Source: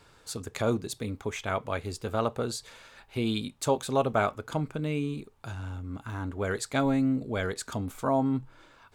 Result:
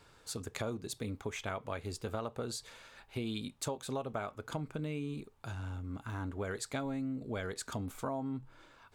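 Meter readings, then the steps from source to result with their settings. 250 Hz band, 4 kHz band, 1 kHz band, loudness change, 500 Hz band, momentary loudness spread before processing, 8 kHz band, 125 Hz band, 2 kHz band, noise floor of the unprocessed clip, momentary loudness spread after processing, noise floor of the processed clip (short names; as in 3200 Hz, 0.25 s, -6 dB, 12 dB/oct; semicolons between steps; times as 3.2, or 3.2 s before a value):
-9.5 dB, -6.5 dB, -10.5 dB, -9.0 dB, -10.0 dB, 12 LU, -5.0 dB, -7.5 dB, -8.0 dB, -59 dBFS, 6 LU, -63 dBFS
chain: compressor 10:1, threshold -30 dBFS, peak gain reduction 11.5 dB; gain -3.5 dB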